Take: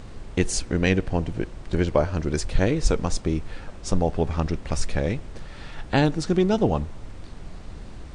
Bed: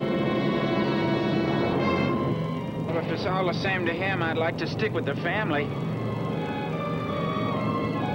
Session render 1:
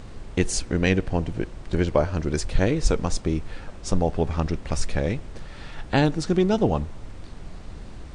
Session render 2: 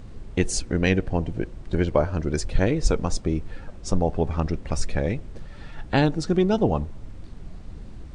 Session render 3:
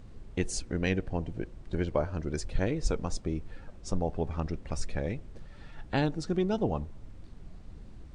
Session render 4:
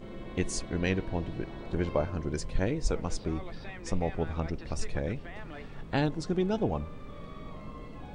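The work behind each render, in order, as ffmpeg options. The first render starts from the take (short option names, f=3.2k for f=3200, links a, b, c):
-af anull
-af "afftdn=nr=7:nf=-40"
-af "volume=-8dB"
-filter_complex "[1:a]volume=-19dB[a];[0:a][a]amix=inputs=2:normalize=0"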